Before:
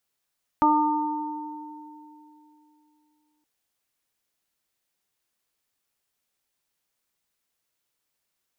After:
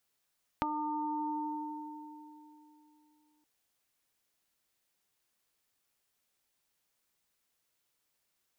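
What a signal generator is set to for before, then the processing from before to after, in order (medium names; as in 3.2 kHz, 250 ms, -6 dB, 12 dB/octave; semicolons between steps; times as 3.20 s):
additive tone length 2.82 s, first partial 302 Hz, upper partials -9.5/4.5/-2 dB, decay 3.28 s, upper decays 0.45/2.69/1.29 s, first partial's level -21 dB
compression 12:1, threshold -32 dBFS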